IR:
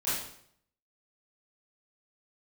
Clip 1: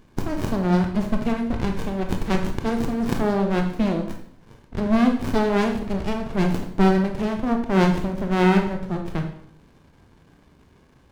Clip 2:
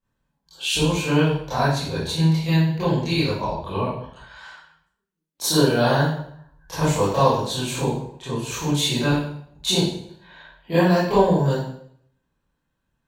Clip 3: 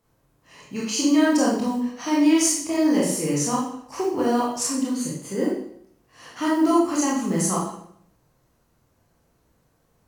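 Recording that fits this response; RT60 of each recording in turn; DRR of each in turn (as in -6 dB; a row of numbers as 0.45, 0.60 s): 2; 0.65, 0.65, 0.65 s; 3.5, -13.5, -6.0 dB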